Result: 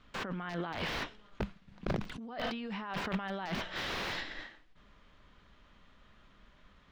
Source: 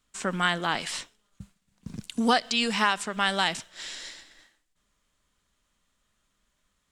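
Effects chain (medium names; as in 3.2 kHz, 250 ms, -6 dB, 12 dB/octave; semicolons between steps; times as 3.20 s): de-esser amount 95%; in parallel at -0.5 dB: peak limiter -21.5 dBFS, peak gain reduction 9 dB; on the sum: compressor with a negative ratio -36 dBFS, ratio -1; integer overflow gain 25.5 dB; distance through air 280 m; trim +2 dB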